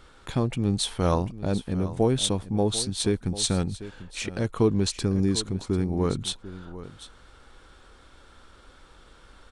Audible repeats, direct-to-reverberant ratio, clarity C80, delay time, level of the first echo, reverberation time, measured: 1, none, none, 0.744 s, -15.0 dB, none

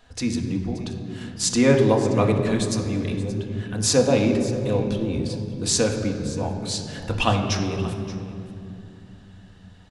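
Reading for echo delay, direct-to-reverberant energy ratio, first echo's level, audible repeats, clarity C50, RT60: 0.577 s, 1.5 dB, -16.0 dB, 1, 5.5 dB, 2.7 s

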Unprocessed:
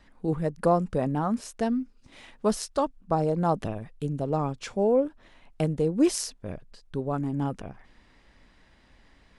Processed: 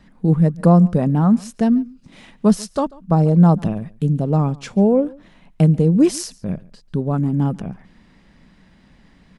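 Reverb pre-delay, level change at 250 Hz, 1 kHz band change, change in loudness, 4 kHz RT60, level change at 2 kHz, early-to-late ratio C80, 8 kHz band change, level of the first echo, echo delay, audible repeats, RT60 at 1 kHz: none, +12.0 dB, +4.0 dB, +10.5 dB, none, +3.5 dB, none, +3.5 dB, -23.5 dB, 0.141 s, 1, none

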